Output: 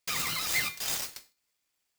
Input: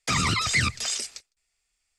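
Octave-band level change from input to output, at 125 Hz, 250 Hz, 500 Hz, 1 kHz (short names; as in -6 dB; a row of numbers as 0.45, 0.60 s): -19.0, -15.0, -6.5, -10.0 dB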